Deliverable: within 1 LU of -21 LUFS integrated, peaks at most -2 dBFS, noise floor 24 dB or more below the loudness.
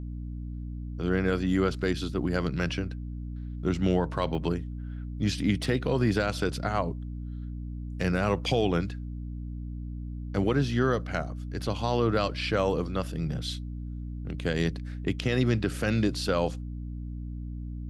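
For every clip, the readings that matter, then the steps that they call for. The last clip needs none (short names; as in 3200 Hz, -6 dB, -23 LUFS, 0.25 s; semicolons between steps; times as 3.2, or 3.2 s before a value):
dropouts 2; longest dropout 1.3 ms; hum 60 Hz; harmonics up to 300 Hz; hum level -33 dBFS; loudness -30.0 LUFS; peak -13.5 dBFS; loudness target -21.0 LUFS
-> interpolate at 4.35/5.64, 1.3 ms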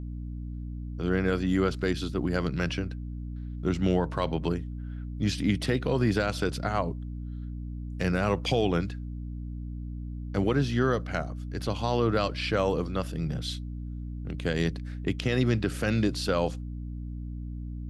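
dropouts 0; hum 60 Hz; harmonics up to 300 Hz; hum level -33 dBFS
-> de-hum 60 Hz, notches 5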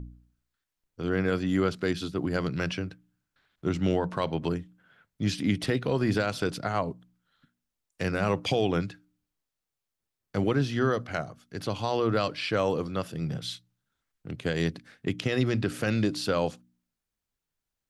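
hum none; loudness -29.0 LUFS; peak -14.0 dBFS; loudness target -21.0 LUFS
-> gain +8 dB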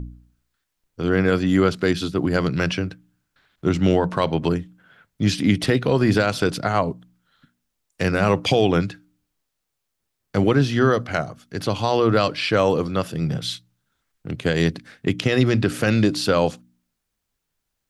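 loudness -21.0 LUFS; peak -6.0 dBFS; noise floor -79 dBFS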